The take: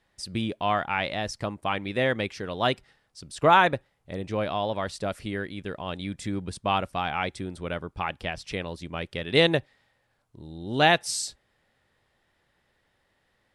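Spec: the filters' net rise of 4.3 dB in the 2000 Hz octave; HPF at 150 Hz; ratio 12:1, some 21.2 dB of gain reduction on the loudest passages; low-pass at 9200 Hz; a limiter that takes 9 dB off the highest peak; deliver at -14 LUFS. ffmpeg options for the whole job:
-af "highpass=150,lowpass=9.2k,equalizer=f=2k:t=o:g=5.5,acompressor=threshold=-34dB:ratio=12,volume=27.5dB,alimiter=limit=-0.5dB:level=0:latency=1"

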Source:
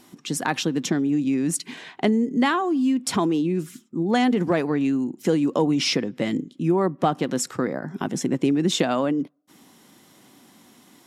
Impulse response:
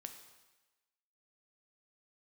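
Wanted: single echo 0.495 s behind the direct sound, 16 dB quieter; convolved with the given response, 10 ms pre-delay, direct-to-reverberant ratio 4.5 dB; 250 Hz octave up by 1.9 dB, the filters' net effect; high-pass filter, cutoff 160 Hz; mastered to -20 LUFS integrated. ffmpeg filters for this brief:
-filter_complex "[0:a]highpass=160,equalizer=f=250:t=o:g=3,aecho=1:1:495:0.158,asplit=2[a][b];[1:a]atrim=start_sample=2205,adelay=10[c];[b][c]afir=irnorm=-1:irlink=0,volume=0dB[d];[a][d]amix=inputs=2:normalize=0,volume=1dB"

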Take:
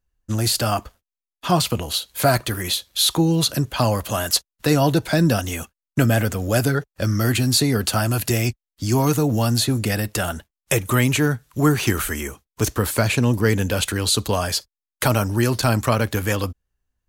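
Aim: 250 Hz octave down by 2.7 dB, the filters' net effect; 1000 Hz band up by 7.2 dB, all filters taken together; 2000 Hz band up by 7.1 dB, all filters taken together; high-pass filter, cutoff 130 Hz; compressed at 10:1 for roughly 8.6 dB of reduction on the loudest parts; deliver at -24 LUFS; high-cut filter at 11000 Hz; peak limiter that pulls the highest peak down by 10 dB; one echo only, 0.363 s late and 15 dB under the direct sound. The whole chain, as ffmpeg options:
-af "highpass=130,lowpass=11k,equalizer=f=250:t=o:g=-3.5,equalizer=f=1k:t=o:g=8,equalizer=f=2k:t=o:g=6.5,acompressor=threshold=-18dB:ratio=10,alimiter=limit=-13.5dB:level=0:latency=1,aecho=1:1:363:0.178,volume=1dB"

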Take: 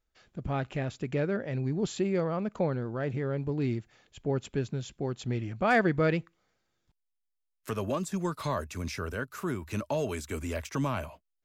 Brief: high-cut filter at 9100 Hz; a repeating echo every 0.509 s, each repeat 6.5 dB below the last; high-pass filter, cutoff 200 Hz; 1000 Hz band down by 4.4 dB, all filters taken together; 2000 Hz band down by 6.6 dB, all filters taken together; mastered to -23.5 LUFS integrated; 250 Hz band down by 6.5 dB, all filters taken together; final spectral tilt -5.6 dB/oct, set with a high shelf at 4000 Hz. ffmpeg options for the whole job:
-af "highpass=200,lowpass=9.1k,equalizer=f=250:t=o:g=-6,equalizer=f=1k:t=o:g=-4,equalizer=f=2k:t=o:g=-6,highshelf=f=4k:g=-5.5,aecho=1:1:509|1018|1527|2036|2545|3054:0.473|0.222|0.105|0.0491|0.0231|0.0109,volume=12.5dB"

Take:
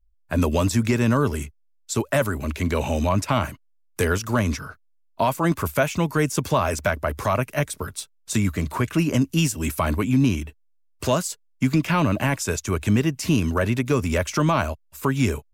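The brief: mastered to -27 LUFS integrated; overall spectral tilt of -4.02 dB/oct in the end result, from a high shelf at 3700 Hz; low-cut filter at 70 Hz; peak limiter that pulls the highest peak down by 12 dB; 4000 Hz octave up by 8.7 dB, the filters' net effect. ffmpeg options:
-af "highpass=70,highshelf=f=3.7k:g=7.5,equalizer=f=4k:t=o:g=7,alimiter=limit=-17dB:level=0:latency=1"

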